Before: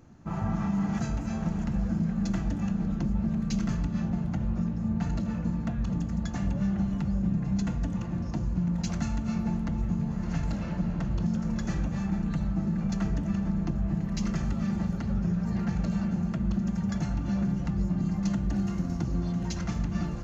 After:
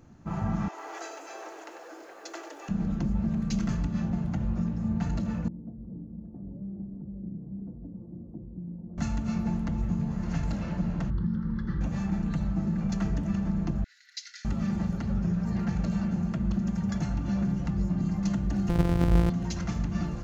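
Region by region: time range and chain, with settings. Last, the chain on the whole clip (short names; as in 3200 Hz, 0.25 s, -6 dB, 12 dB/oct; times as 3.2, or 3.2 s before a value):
0.68–2.69 steep high-pass 330 Hz 72 dB/oct + short-mantissa float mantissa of 6-bit + lo-fi delay 96 ms, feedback 35%, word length 10-bit, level -8 dB
5.48–8.98 ladder low-pass 490 Hz, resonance 30% + low shelf 170 Hz -11 dB
11.1–11.81 air absorption 330 m + fixed phaser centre 2500 Hz, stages 6
13.84–14.45 rippled Chebyshev high-pass 1400 Hz, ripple 9 dB + bell 3900 Hz +11.5 dB 0.49 oct
18.69–19.3 sample sorter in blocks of 256 samples + tilt -2.5 dB/oct
whole clip: dry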